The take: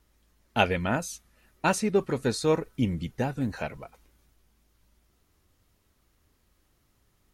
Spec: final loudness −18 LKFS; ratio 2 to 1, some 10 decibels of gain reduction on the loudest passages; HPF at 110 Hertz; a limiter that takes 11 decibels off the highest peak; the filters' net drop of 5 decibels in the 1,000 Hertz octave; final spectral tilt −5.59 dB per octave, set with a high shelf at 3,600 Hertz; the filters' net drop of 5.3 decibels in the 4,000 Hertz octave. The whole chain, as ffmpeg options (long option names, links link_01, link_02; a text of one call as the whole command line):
ffmpeg -i in.wav -af "highpass=110,equalizer=frequency=1000:width_type=o:gain=-6.5,highshelf=frequency=3600:gain=-3.5,equalizer=frequency=4000:width_type=o:gain=-4.5,acompressor=threshold=-38dB:ratio=2,volume=22.5dB,alimiter=limit=-5dB:level=0:latency=1" out.wav